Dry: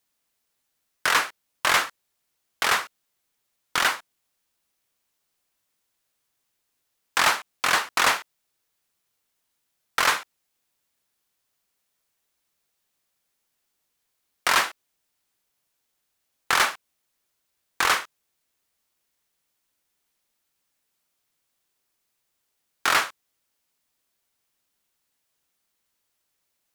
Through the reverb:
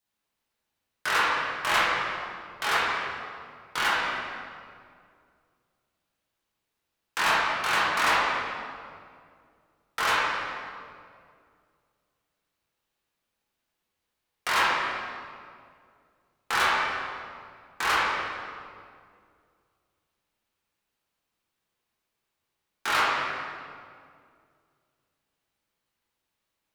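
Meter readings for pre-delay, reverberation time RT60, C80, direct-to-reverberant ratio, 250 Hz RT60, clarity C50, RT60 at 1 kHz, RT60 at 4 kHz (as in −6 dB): 8 ms, 2.2 s, 0.0 dB, −8.5 dB, 2.6 s, −2.5 dB, 2.0 s, 1.5 s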